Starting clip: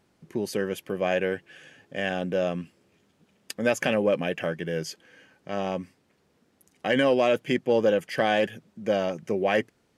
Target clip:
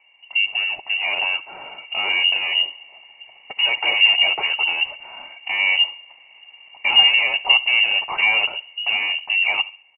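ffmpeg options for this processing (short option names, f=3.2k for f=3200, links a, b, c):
-filter_complex "[0:a]dynaudnorm=f=140:g=17:m=11dB,asplit=2[a][b];[b]highpass=f=720:p=1,volume=27dB,asoftclip=type=tanh:threshold=-2.5dB[c];[a][c]amix=inputs=2:normalize=0,lowpass=f=1.4k:p=1,volume=-6dB,asplit=3[d][e][f];[d]bandpass=f=300:t=q:w=8,volume=0dB[g];[e]bandpass=f=870:t=q:w=8,volume=-6dB[h];[f]bandpass=f=2.24k:t=q:w=8,volume=-9dB[i];[g][h][i]amix=inputs=3:normalize=0,asplit=2[j][k];[k]adelay=69,lowpass=f=1.7k:p=1,volume=-16.5dB,asplit=2[l][m];[m]adelay=69,lowpass=f=1.7k:p=1,volume=0.41,asplit=2[n][o];[o]adelay=69,lowpass=f=1.7k:p=1,volume=0.41,asplit=2[p][q];[q]adelay=69,lowpass=f=1.7k:p=1,volume=0.41[r];[l][n][p][r]amix=inputs=4:normalize=0[s];[j][s]amix=inputs=2:normalize=0,lowpass=f=2.6k:t=q:w=0.5098,lowpass=f=2.6k:t=q:w=0.6013,lowpass=f=2.6k:t=q:w=0.9,lowpass=f=2.6k:t=q:w=2.563,afreqshift=-3100,volume=8dB"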